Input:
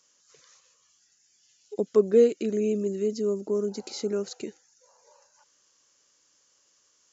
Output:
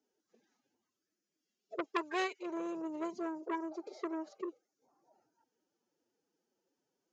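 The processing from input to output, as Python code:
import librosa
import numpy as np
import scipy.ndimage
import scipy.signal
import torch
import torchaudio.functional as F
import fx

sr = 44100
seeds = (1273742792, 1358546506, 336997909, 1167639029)

y = scipy.signal.sosfilt(scipy.signal.butter(4, 6700.0, 'lowpass', fs=sr, output='sos'), x)
y = fx.high_shelf(y, sr, hz=3800.0, db=7.5)
y = fx.pitch_keep_formants(y, sr, semitones=8.0)
y = fx.auto_wah(y, sr, base_hz=310.0, top_hz=1600.0, q=2.2, full_db=-19.0, direction='up')
y = fx.transformer_sat(y, sr, knee_hz=1900.0)
y = y * 10.0 ** (2.0 / 20.0)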